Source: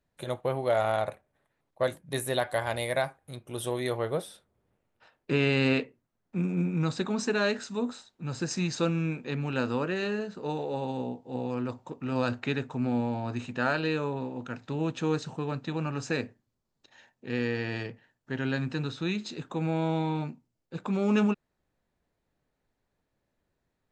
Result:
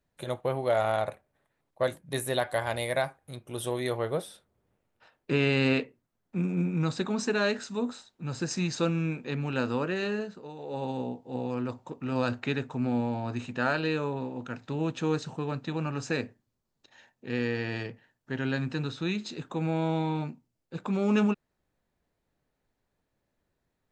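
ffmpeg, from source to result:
ffmpeg -i in.wav -filter_complex "[0:a]asplit=3[link_01][link_02][link_03];[link_01]atrim=end=10.49,asetpts=PTS-STARTPTS,afade=type=out:start_time=10.21:duration=0.28:silence=0.266073[link_04];[link_02]atrim=start=10.49:end=10.56,asetpts=PTS-STARTPTS,volume=-11.5dB[link_05];[link_03]atrim=start=10.56,asetpts=PTS-STARTPTS,afade=type=in:duration=0.28:silence=0.266073[link_06];[link_04][link_05][link_06]concat=n=3:v=0:a=1" out.wav

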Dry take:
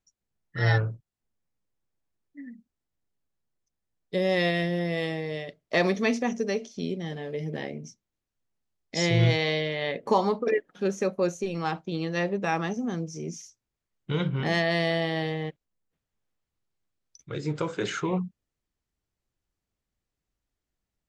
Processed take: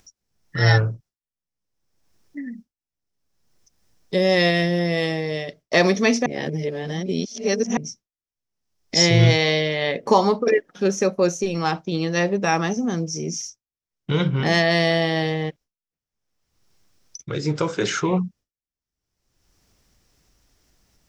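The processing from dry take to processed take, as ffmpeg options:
ffmpeg -i in.wav -filter_complex "[0:a]asplit=3[link_01][link_02][link_03];[link_01]atrim=end=6.262[link_04];[link_02]atrim=start=6.258:end=7.772,asetpts=PTS-STARTPTS,areverse[link_05];[link_03]atrim=start=7.768[link_06];[link_04][link_05]acrossfade=duration=0.004:curve1=hsin:curve2=hsin[link_07];[link_07][link_06]acrossfade=duration=0.004:curve1=hsin:curve2=hsin,agate=range=-33dB:threshold=-47dB:ratio=3:detection=peak,equalizer=frequency=5500:width_type=o:width=0.39:gain=9.5,acompressor=mode=upward:threshold=-33dB:ratio=2.5,volume=6.5dB" out.wav

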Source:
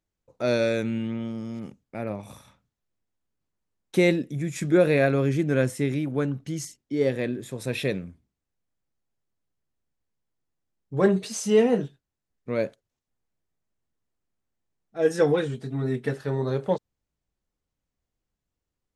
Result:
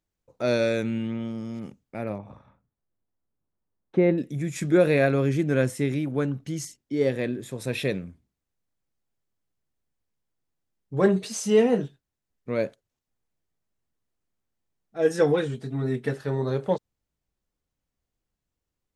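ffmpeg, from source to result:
ffmpeg -i in.wav -filter_complex "[0:a]asettb=1/sr,asplit=3[link_01][link_02][link_03];[link_01]atrim=end=2.184[link_04];[link_02]atrim=start=2.18:end=4.18,asetpts=PTS-STARTPTS,afade=type=in:duration=0.004:curve=qsin,afade=type=out:start_time=1.996:duration=0.004:curve=qsin,lowpass=1300[link_05];[link_03]atrim=start=4.176[link_06];[link_04][link_05]acrossfade=duration=0.004:curve1=hsin:curve2=qsin[link_07];[link_07][link_06]acrossfade=duration=0.004:curve1=qsin:curve2=hsin" out.wav

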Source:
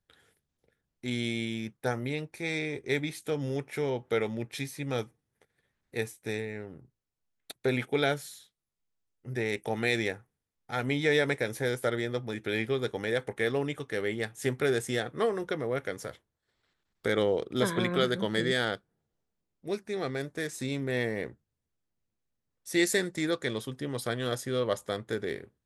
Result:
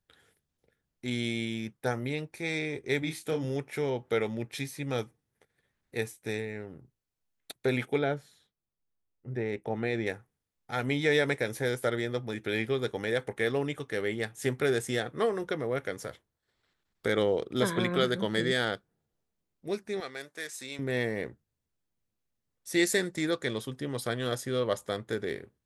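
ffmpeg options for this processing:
ffmpeg -i in.wav -filter_complex "[0:a]asettb=1/sr,asplit=3[link_01][link_02][link_03];[link_01]atrim=end=2.994[link_04];[link_02]atrim=start=2.99:end=3.45,asetpts=PTS-STARTPTS,afade=type=in:duration=0.004:curve=qsin,afade=type=out:start_time=0.456:duration=0.004:curve=qsin,asplit=2[link_05][link_06];[link_06]adelay=31,volume=-6.5dB[link_07];[link_05][link_07]amix=inputs=2:normalize=0,atrim=end_sample=20286[link_08];[link_03]atrim=start=3.446[link_09];[link_04][link_08]acrossfade=duration=0.004:curve1=hsin:curve2=qsin[link_10];[link_10][link_09]acrossfade=duration=0.004:curve1=qsin:curve2=hsin,asplit=3[link_11][link_12][link_13];[link_11]afade=type=out:start_time=7.97:duration=0.02[link_14];[link_12]lowpass=frequency=1000:poles=1,afade=type=in:start_time=7.97:duration=0.02,afade=type=out:start_time=10.06:duration=0.02[link_15];[link_13]afade=type=in:start_time=10.06:duration=0.02[link_16];[link_14][link_15][link_16]amix=inputs=3:normalize=0,asettb=1/sr,asplit=3[link_17][link_18][link_19];[link_17]atrim=end=20.004[link_20];[link_18]atrim=start=20:end=20.79,asetpts=PTS-STARTPTS,afade=type=in:duration=0.004:curve=qsin,afade=type=out:start_time=0.786:duration=0.004:curve=qsin,highpass=frequency=1200:poles=1[link_21];[link_19]atrim=start=20.786[link_22];[link_20][link_21]acrossfade=duration=0.004:curve1=hsin:curve2=qsin[link_23];[link_23][link_22]acrossfade=duration=0.004:curve1=qsin:curve2=hsin" out.wav

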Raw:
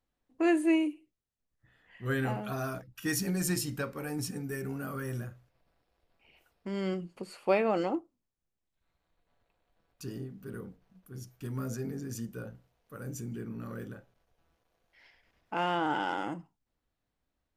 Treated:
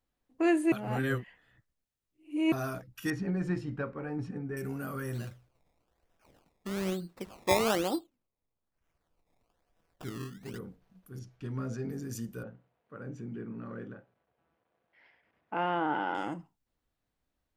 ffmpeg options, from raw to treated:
ffmpeg -i in.wav -filter_complex "[0:a]asettb=1/sr,asplit=3[link_01][link_02][link_03];[link_01]atrim=end=3.104[link_04];[link_02]atrim=start=3.1:end=4.57,asetpts=PTS-STARTPTS,afade=type=in:duration=0.004:curve=qsin,afade=type=out:start_time=1.466:duration=0.004:curve=qsin,lowpass=1700[link_05];[link_03]atrim=start=4.566[link_06];[link_04][link_05]acrossfade=duration=0.004:curve1=hsin:curve2=qsin[link_07];[link_07][link_06]acrossfade=duration=0.004:curve1=qsin:curve2=hsin,asplit=3[link_08][link_09][link_10];[link_08]afade=type=out:start_time=5.13:duration=0.02[link_11];[link_09]acrusher=samples=20:mix=1:aa=0.000001:lfo=1:lforange=20:lforate=1.1,afade=type=in:start_time=5.13:duration=0.02,afade=type=out:start_time=10.57:duration=0.02[link_12];[link_10]afade=type=in:start_time=10.57:duration=0.02[link_13];[link_11][link_12][link_13]amix=inputs=3:normalize=0,asettb=1/sr,asplit=3[link_14][link_15][link_16];[link_14]atrim=end=11.194[link_17];[link_15]atrim=start=11.19:end=11.9,asetpts=PTS-STARTPTS,afade=type=in:duration=0.004:curve=qsin,afade=type=out:start_time=0.706:duration=0.004:curve=qsin,lowpass=4400[link_18];[link_16]atrim=start=11.896[link_19];[link_17][link_18]acrossfade=duration=0.004:curve1=hsin:curve2=qsin[link_20];[link_20][link_19]acrossfade=duration=0.004:curve1=qsin:curve2=hsin,asettb=1/sr,asplit=3[link_21][link_22][link_23];[link_21]atrim=end=12.434[link_24];[link_22]atrim=start=12.43:end=16.15,asetpts=PTS-STARTPTS,afade=type=in:duration=0.004:curve=qsin,afade=type=out:start_time=3.716:duration=0.004:curve=qsin,highpass=130,lowpass=2300[link_25];[link_23]atrim=start=16.146[link_26];[link_24][link_25]acrossfade=duration=0.004:curve1=hsin:curve2=qsin[link_27];[link_27][link_26]acrossfade=duration=0.004:curve1=qsin:curve2=hsin,asplit=3[link_28][link_29][link_30];[link_28]atrim=end=0.722[link_31];[link_29]atrim=start=0.718:end=2.522,asetpts=PTS-STARTPTS,areverse[link_32];[link_30]atrim=start=2.518[link_33];[link_31][link_32]acrossfade=duration=0.004:curve1=hsin:curve2=hsin[link_34];[link_34][link_33]acrossfade=duration=0.004:curve1=hsin:curve2=hsin" out.wav

